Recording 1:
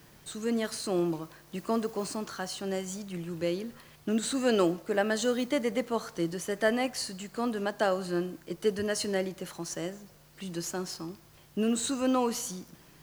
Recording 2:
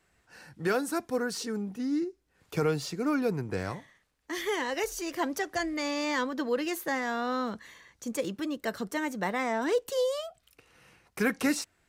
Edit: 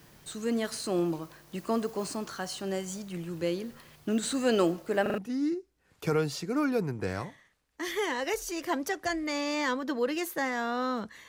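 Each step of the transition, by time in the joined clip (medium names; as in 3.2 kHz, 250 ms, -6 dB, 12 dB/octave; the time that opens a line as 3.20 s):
recording 1
5.02 s: stutter in place 0.04 s, 4 plays
5.18 s: go over to recording 2 from 1.68 s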